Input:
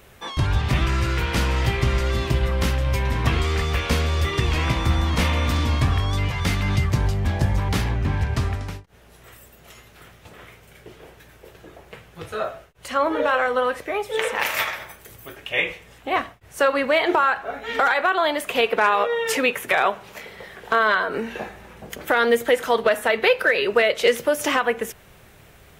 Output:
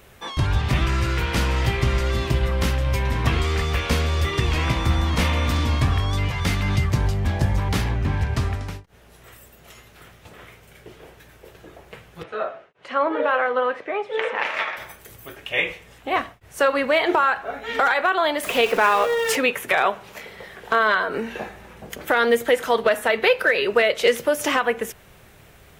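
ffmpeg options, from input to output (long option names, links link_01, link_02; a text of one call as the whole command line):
ffmpeg -i in.wav -filter_complex "[0:a]asettb=1/sr,asplit=3[link_01][link_02][link_03];[link_01]atrim=end=12.234[link_04];[link_02]atrim=start=12.23:end=14.77,asetpts=PTS-STARTPTS,afade=type=in:duration=0.004:curve=qsin,afade=type=out:start_time=2.536:duration=0.004:curve=qsin,highpass=240,lowpass=2800[link_05];[link_03]atrim=start=14.766[link_06];[link_04][link_05]acrossfade=duration=0.004:curve1=hsin:curve2=qsin[link_07];[link_07][link_06]acrossfade=duration=0.004:curve1=qsin:curve2=hsin,asettb=1/sr,asplit=3[link_08][link_09][link_10];[link_08]atrim=end=18.434[link_11];[link_09]atrim=start=18.43:end=19.36,asetpts=PTS-STARTPTS,afade=type=in:duration=0.004:curve=qsin,afade=type=out:start_time=0.926:duration=0.004:curve=qsin,aeval=exprs='val(0)+0.5*0.0376*sgn(val(0))':channel_layout=same[link_12];[link_10]atrim=start=19.356[link_13];[link_11][link_12]acrossfade=duration=0.004:curve1=hsin:curve2=qsin[link_14];[link_14][link_13]acrossfade=duration=0.004:curve1=qsin:curve2=hsin" out.wav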